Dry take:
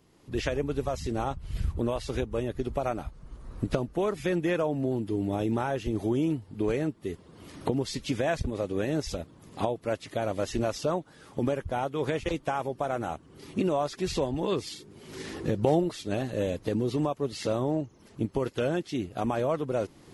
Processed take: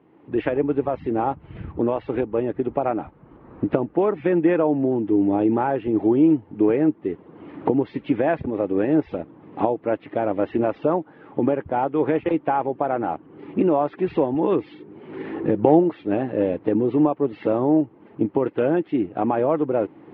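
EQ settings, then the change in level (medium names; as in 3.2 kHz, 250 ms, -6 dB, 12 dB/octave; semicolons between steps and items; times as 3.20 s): distance through air 260 m; cabinet simulation 150–2700 Hz, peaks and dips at 310 Hz +8 dB, 460 Hz +3 dB, 840 Hz +6 dB; +5.5 dB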